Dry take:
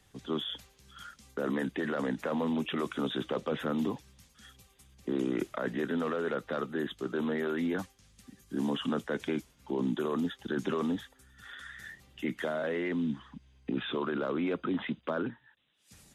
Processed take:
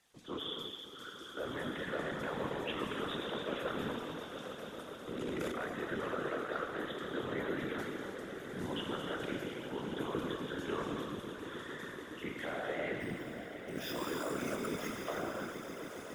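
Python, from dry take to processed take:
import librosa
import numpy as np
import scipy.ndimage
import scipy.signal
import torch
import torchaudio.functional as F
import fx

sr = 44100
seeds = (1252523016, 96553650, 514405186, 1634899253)

p1 = fx.highpass(x, sr, hz=490.0, slope=6)
p2 = fx.sample_hold(p1, sr, seeds[0], rate_hz=8500.0, jitter_pct=0, at=(13.0, 14.97))
p3 = p2 + fx.echo_swell(p2, sr, ms=140, loudest=5, wet_db=-14.5, dry=0)
p4 = fx.rev_gated(p3, sr, seeds[1], gate_ms=350, shape='flat', drr_db=0.5)
p5 = fx.whisperise(p4, sr, seeds[2])
p6 = fx.transient(p5, sr, attack_db=-4, sustain_db=11, at=(5.14, 5.65), fade=0.02)
y = p6 * librosa.db_to_amplitude(-5.0)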